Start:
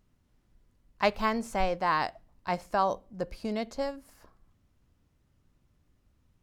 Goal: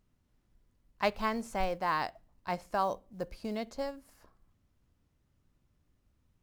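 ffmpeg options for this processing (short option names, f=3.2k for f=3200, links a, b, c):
-af "acrusher=bits=8:mode=log:mix=0:aa=0.000001,volume=-4dB"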